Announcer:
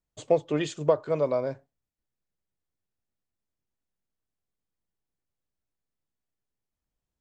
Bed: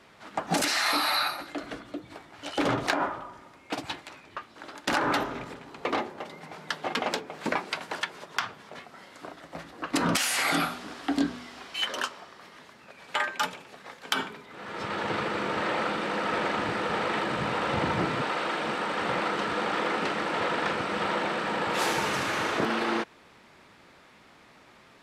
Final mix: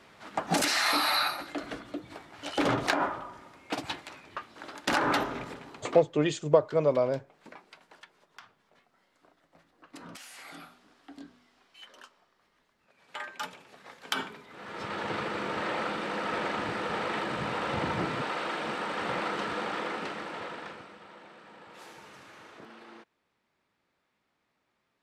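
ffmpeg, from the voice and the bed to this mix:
-filter_complex "[0:a]adelay=5650,volume=1.12[s0];[1:a]volume=7.08,afade=t=out:st=5.65:d=0.41:silence=0.0944061,afade=t=in:st=12.76:d=1.36:silence=0.133352,afade=t=out:st=19.44:d=1.55:silence=0.112202[s1];[s0][s1]amix=inputs=2:normalize=0"

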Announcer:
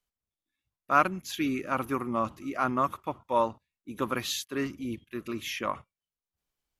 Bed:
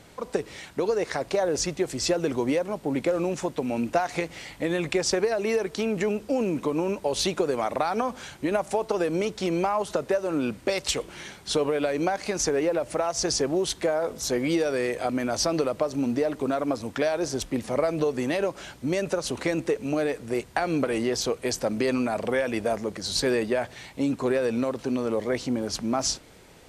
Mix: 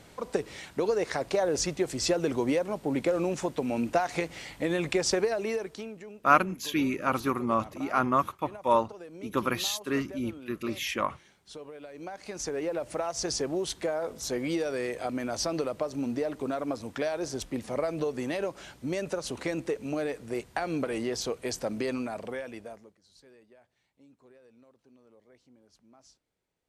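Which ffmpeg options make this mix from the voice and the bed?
-filter_complex "[0:a]adelay=5350,volume=1.26[s0];[1:a]volume=3.98,afade=t=out:st=5.18:d=0.81:silence=0.133352,afade=t=in:st=11.91:d=0.96:silence=0.199526,afade=t=out:st=21.75:d=1.21:silence=0.0421697[s1];[s0][s1]amix=inputs=2:normalize=0"

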